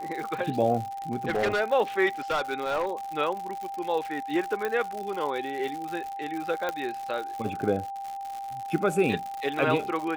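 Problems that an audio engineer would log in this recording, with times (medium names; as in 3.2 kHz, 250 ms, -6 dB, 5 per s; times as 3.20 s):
crackle 130 per s -32 dBFS
whine 790 Hz -33 dBFS
1.12–1.61 s: clipped -21.5 dBFS
2.30–2.91 s: clipped -22.5 dBFS
4.65 s: pop -16 dBFS
6.69 s: pop -15 dBFS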